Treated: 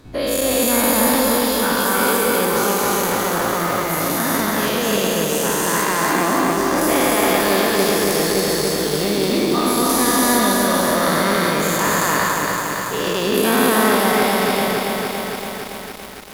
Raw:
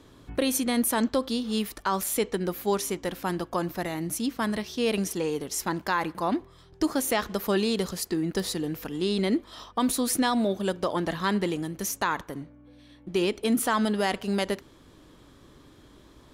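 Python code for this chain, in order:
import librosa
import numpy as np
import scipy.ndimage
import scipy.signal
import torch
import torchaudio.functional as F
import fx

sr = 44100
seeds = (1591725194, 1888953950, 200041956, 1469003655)

y = fx.spec_dilate(x, sr, span_ms=480)
y = fx.formant_shift(y, sr, semitones=2)
y = fx.echo_crushed(y, sr, ms=282, feedback_pct=80, bits=6, wet_db=-3)
y = y * librosa.db_to_amplitude(-1.5)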